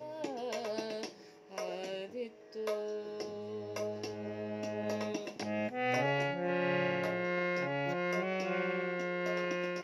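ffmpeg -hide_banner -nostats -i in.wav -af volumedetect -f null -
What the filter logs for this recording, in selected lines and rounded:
mean_volume: -36.1 dB
max_volume: -20.3 dB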